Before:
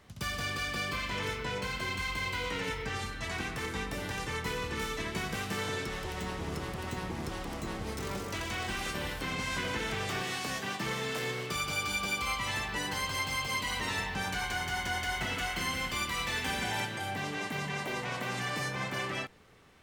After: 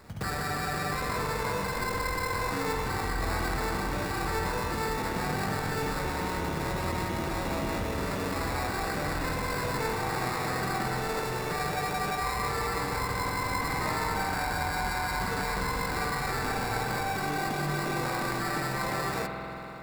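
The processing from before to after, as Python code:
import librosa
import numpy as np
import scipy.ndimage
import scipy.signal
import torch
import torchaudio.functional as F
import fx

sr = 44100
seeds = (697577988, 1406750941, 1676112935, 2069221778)

p1 = fx.over_compress(x, sr, threshold_db=-39.0, ratio=-1.0)
p2 = x + F.gain(torch.from_numpy(p1), 2.0).numpy()
p3 = fx.sample_hold(p2, sr, seeds[0], rate_hz=3100.0, jitter_pct=0)
p4 = fx.rev_spring(p3, sr, rt60_s=4.0, pass_ms=(47,), chirp_ms=35, drr_db=2.0)
y = F.gain(torch.from_numpy(p4), -2.5).numpy()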